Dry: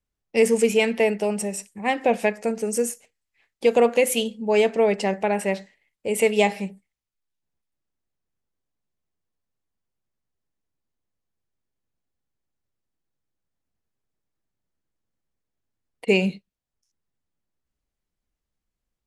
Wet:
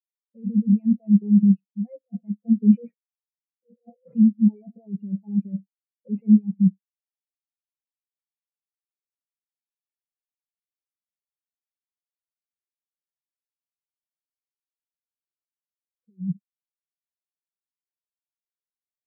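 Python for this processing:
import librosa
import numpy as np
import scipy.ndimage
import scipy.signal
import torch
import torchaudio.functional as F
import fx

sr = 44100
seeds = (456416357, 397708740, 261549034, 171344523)

p1 = x + 0.8 * np.pad(x, (int(5.7 * sr / 1000.0), 0))[:len(x)]
p2 = (np.kron(p1[::4], np.eye(4)[0]) * 4)[:len(p1)]
p3 = fx.level_steps(p2, sr, step_db=10)
p4 = p2 + (p3 * 10.0 ** (0.0 / 20.0))
p5 = scipy.signal.sosfilt(scipy.signal.cheby1(3, 1.0, [150.0, 2500.0], 'bandpass', fs=sr, output='sos'), p4)
p6 = fx.over_compress(p5, sr, threshold_db=-22.0, ratio=-1.0)
p7 = fx.low_shelf(p6, sr, hz=200.0, db=12.0)
y = fx.spectral_expand(p7, sr, expansion=4.0)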